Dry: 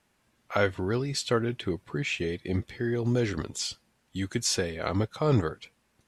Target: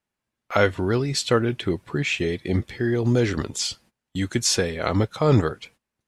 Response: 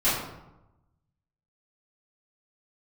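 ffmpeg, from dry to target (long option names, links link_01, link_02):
-af "agate=range=-20dB:threshold=-56dB:ratio=16:detection=peak,volume=6dB"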